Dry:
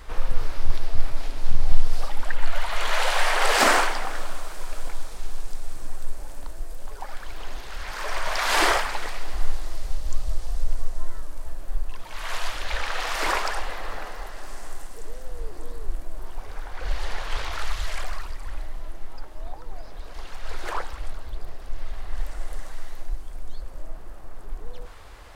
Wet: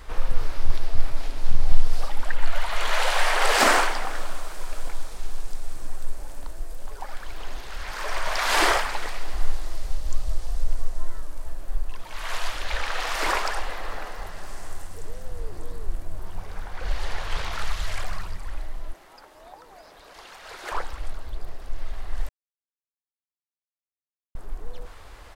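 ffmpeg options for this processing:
ffmpeg -i in.wav -filter_complex "[0:a]asplit=3[link_01][link_02][link_03];[link_01]afade=type=out:start_time=14.17:duration=0.02[link_04];[link_02]asplit=3[link_05][link_06][link_07];[link_06]adelay=225,afreqshift=-95,volume=-21dB[link_08];[link_07]adelay=450,afreqshift=-190,volume=-30.6dB[link_09];[link_05][link_08][link_09]amix=inputs=3:normalize=0,afade=type=in:start_time=14.17:duration=0.02,afade=type=out:start_time=18.39:duration=0.02[link_10];[link_03]afade=type=in:start_time=18.39:duration=0.02[link_11];[link_04][link_10][link_11]amix=inputs=3:normalize=0,asettb=1/sr,asplit=3[link_12][link_13][link_14];[link_12]atrim=end=18.934[link_15];[link_13]atrim=start=18.93:end=20.72,asetpts=PTS-STARTPTS,afade=type=in:duration=0.004:curve=qsin,afade=type=out:start_time=1.786:duration=0.004:curve=qsin,highpass=frequency=460:poles=1[link_16];[link_14]atrim=start=20.716[link_17];[link_15][link_16]acrossfade=duration=0.004:curve1=hsin:curve2=qsin[link_18];[link_18][link_17]acrossfade=duration=0.004:curve1=qsin:curve2=hsin,asplit=3[link_19][link_20][link_21];[link_19]atrim=end=22.29,asetpts=PTS-STARTPTS,afade=type=out:start_time=22.286:duration=0.004:curve=hsin[link_22];[link_20]atrim=start=22.29:end=24.35,asetpts=PTS-STARTPTS,volume=0[link_23];[link_21]atrim=start=24.35,asetpts=PTS-STARTPTS,afade=type=in:duration=0.004:curve=hsin[link_24];[link_22][link_23][link_24]concat=n=3:v=0:a=1" out.wav

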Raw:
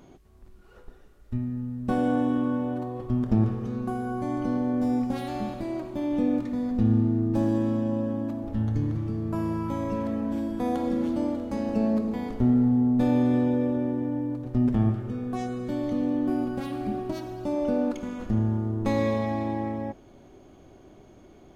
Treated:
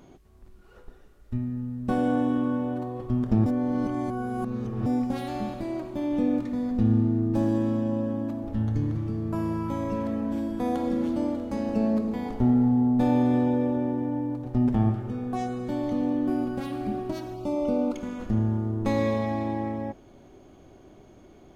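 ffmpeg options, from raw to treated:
ffmpeg -i in.wav -filter_complex "[0:a]asettb=1/sr,asplit=3[link_01][link_02][link_03];[link_01]atrim=end=12.254[link_04];[link_02]atrim=start=12.25:end=16.13,asetpts=PTS-STARTPTS,afade=type=in:duration=0.004:curve=qsin,afade=type=out:start_time=3.876:duration=0.004:curve=qsin,equalizer=frequency=820:width=5.4:gain=8.5[link_05];[link_03]atrim=start=16.126[link_06];[link_04][link_05]acrossfade=duration=0.004:curve1=hsin:curve2=qsin[link_07];[link_07][link_06]acrossfade=duration=0.004:curve1=qsin:curve2=hsin,asettb=1/sr,asplit=3[link_08][link_09][link_10];[link_08]atrim=end=17.344[link_11];[link_09]atrim=start=17.34:end=17.94,asetpts=PTS-STARTPTS,afade=type=in:duration=0.004:curve=qsin,afade=type=out:start_time=0.596:duration=0.004:curve=qsin,asuperstop=centerf=1700:order=8:qfactor=2.9[link_12];[link_10]atrim=start=17.936[link_13];[link_11][link_12]acrossfade=duration=0.004:curve1=hsin:curve2=qsin[link_14];[link_14][link_13]acrossfade=duration=0.004:curve1=qsin:curve2=hsin,asplit=3[link_15][link_16][link_17];[link_15]atrim=end=3.462[link_18];[link_16]atrim=start=3.458:end=4.862,asetpts=PTS-STARTPTS,areverse[link_19];[link_17]atrim=start=4.858[link_20];[link_18][link_19]acrossfade=duration=0.004:curve1=hsin:curve2=hsin[link_21];[link_21][link_20]acrossfade=duration=0.004:curve1=hsin:curve2=hsin" out.wav

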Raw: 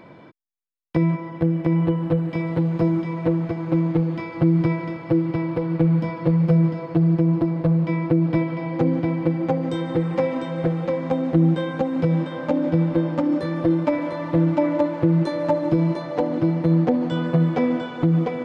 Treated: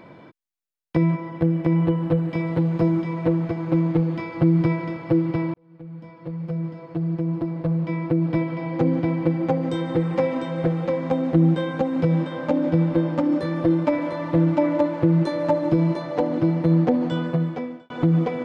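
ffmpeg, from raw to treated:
ffmpeg -i in.wav -filter_complex "[0:a]asplit=3[link_01][link_02][link_03];[link_01]atrim=end=5.54,asetpts=PTS-STARTPTS,afade=type=out:start_time=5.536:duration=0.004:curve=hsin[link_04];[link_02]atrim=start=5.54:end=17.9,asetpts=PTS-STARTPTS,afade=type=in:duration=3.46,afade=type=out:start_time=11.54:duration=0.82[link_05];[link_03]atrim=start=17.9,asetpts=PTS-STARTPTS,afade=type=in:duration=0.004:curve=hsin[link_06];[link_04][link_05][link_06]concat=n=3:v=0:a=1" out.wav

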